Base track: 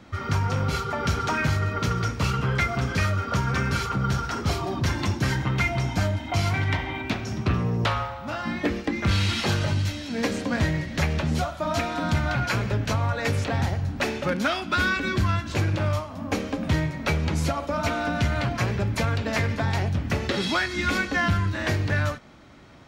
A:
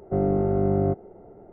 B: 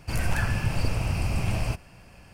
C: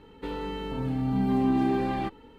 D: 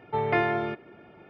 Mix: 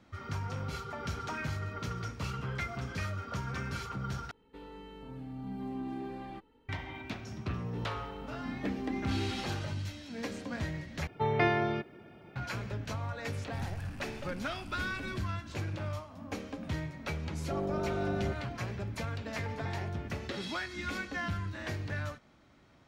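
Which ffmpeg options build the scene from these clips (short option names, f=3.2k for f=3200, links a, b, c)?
-filter_complex "[3:a]asplit=2[a][b];[4:a]asplit=2[c][d];[0:a]volume=-12.5dB[e];[b]flanger=delay=18:depth=2.7:speed=2.3[f];[c]bass=f=250:g=6,treble=f=4k:g=13[g];[2:a]asoftclip=type=tanh:threshold=-25.5dB[h];[1:a]asoftclip=type=tanh:threshold=-17.5dB[i];[d]acompressor=threshold=-31dB:ratio=6:attack=3.2:release=140:knee=1:detection=peak[j];[e]asplit=3[k][l][m];[k]atrim=end=4.314[n];[a]atrim=end=2.38,asetpts=PTS-STARTPTS,volume=-14.5dB[o];[l]atrim=start=6.686:end=11.074[p];[g]atrim=end=1.29,asetpts=PTS-STARTPTS,volume=-4dB[q];[m]atrim=start=12.356[r];[f]atrim=end=2.38,asetpts=PTS-STARTPTS,volume=-9.5dB,afade=t=in:d=0.004:c=hsin,afade=t=out:st=2.376:d=0.004:c=hsin,adelay=7500[s];[h]atrim=end=2.33,asetpts=PTS-STARTPTS,volume=-16.5dB,afade=t=in:d=0.004:c=hsin,afade=t=out:st=2.326:d=0.004:c=hsin,adelay=13440[t];[i]atrim=end=1.52,asetpts=PTS-STARTPTS,volume=-9.5dB,afade=t=in:d=0.004:c=hsin,afade=t=out:st=1.516:d=0.004:c=hsin,adelay=17390[u];[j]atrim=end=1.29,asetpts=PTS-STARTPTS,volume=-10dB,afade=t=in:d=0.004:c=hsin,afade=t=out:st=1.286:d=0.004:c=hsin,adelay=19330[v];[n][o]acrossfade=d=0.004:c1=hsin:c2=hsin[w];[w][p]acrossfade=d=0.004:c1=hsin:c2=hsin[x];[x][q]acrossfade=d=0.004:c1=hsin:c2=hsin[y];[y][r]acrossfade=d=0.004:c1=hsin:c2=hsin[z];[z][s][t][u][v]amix=inputs=5:normalize=0"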